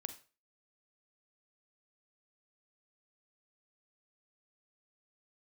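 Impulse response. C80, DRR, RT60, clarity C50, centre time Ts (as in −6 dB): 16.5 dB, 9.0 dB, 0.35 s, 12.0 dB, 8 ms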